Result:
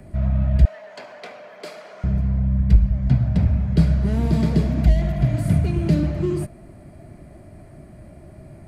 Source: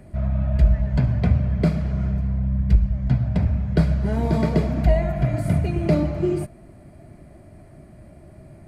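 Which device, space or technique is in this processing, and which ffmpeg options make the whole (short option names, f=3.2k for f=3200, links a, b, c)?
one-band saturation: -filter_complex "[0:a]acrossover=split=350|2900[a][b][c];[b]asoftclip=type=tanh:threshold=-37dB[d];[a][d][c]amix=inputs=3:normalize=0,asettb=1/sr,asplit=3[e][f][g];[e]atrim=end=0.654[h];[f]atrim=start=0.65:end=2.04,asetpts=PTS-STARTPTS,afade=t=in:d=0.004:c=qsin,afade=t=out:st=1.386:d=0.004:c=qsin,highpass=f=490:w=0.5412,highpass=f=490:w=1.3066[i];[g]atrim=start=2.036[j];[h][i]acrossfade=d=0.004:c1=hsin:c2=qsin[k];[k][j]acrossfade=d=0.004:c1=qsin:c2=hsin,volume=2.5dB"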